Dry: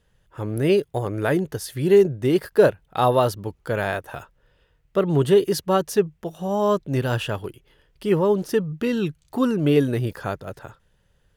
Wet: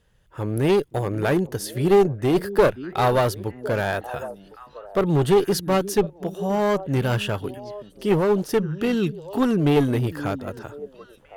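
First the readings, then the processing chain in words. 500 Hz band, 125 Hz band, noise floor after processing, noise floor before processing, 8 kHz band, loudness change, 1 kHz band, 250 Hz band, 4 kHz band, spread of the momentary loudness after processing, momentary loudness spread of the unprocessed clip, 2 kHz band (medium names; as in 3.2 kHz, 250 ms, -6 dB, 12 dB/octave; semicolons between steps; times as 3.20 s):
-1.0 dB, +1.0 dB, -53 dBFS, -65 dBFS, +1.5 dB, -0.5 dB, +1.0 dB, +0.5 dB, +1.0 dB, 14 LU, 13 LU, +1.0 dB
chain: repeats whose band climbs or falls 528 ms, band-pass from 230 Hz, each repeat 1.4 oct, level -12 dB; one-sided clip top -19.5 dBFS; trim +1.5 dB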